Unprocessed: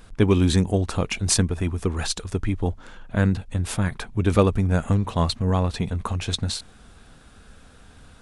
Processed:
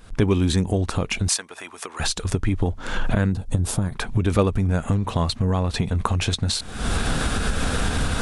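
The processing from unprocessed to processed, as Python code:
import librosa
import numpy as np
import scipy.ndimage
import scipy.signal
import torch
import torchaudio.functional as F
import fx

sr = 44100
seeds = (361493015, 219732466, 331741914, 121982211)

y = fx.recorder_agc(x, sr, target_db=-12.5, rise_db_per_s=67.0, max_gain_db=30)
y = fx.highpass(y, sr, hz=840.0, slope=12, at=(1.28, 2.0))
y = fx.peak_eq(y, sr, hz=2200.0, db=-12.0, octaves=1.6, at=(3.31, 3.91), fade=0.02)
y = y * librosa.db_to_amplitude(-1.5)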